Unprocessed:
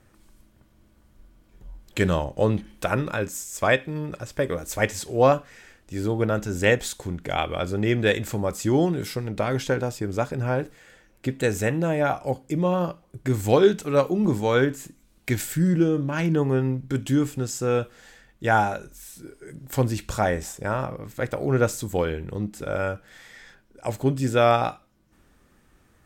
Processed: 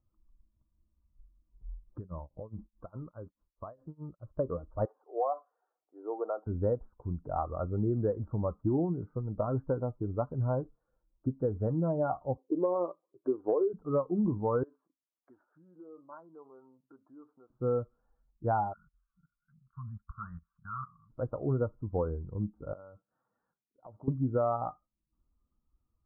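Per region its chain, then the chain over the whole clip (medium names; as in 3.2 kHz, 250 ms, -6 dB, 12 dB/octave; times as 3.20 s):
1.98–4.34 s: tremolo 4.8 Hz, depth 94% + compression 20:1, threshold -27 dBFS
4.85–6.47 s: high-pass 390 Hz 24 dB/octave + peaking EQ 750 Hz +8 dB 0.23 oct + compression 4:1, threshold -21 dBFS
12.37–13.73 s: resonant high-pass 390 Hz, resonance Q 2.3 + compression, threshold -13 dBFS
14.63–17.50 s: compression 12:1, threshold -26 dBFS + high-pass 530 Hz + low-pass that closes with the level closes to 1.9 kHz, closed at -31 dBFS
18.73–21.10 s: elliptic band-stop 200–1200 Hz + level held to a coarse grid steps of 16 dB + overdrive pedal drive 16 dB, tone 2.2 kHz, clips at -19.5 dBFS
22.73–24.08 s: high-pass 120 Hz + gate -53 dBFS, range -7 dB + compression, threshold -33 dBFS
whole clip: expander on every frequency bin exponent 1.5; steep low-pass 1.3 kHz 72 dB/octave; compression 12:1, threshold -25 dBFS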